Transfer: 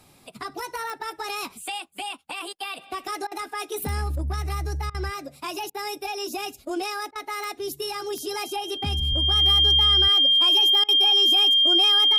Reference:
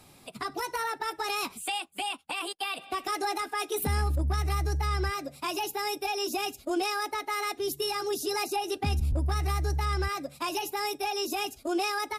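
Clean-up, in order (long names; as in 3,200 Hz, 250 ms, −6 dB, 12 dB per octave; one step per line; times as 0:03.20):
click removal
notch filter 3,200 Hz, Q 30
repair the gap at 0:03.27/0:04.90/0:05.70/0:07.11/0:10.84, 44 ms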